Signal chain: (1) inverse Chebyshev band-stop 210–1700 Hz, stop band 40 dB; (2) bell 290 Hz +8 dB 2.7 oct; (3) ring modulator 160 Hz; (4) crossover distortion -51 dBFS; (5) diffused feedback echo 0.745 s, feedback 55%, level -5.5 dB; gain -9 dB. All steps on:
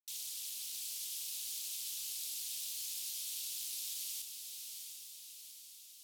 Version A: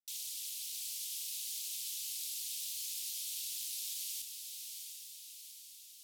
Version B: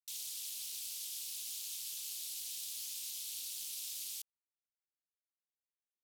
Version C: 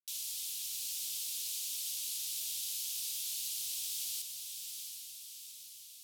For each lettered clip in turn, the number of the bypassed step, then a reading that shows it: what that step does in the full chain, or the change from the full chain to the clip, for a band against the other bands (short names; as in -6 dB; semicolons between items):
4, distortion -21 dB; 5, echo-to-direct -4.0 dB to none; 3, crest factor change -1.5 dB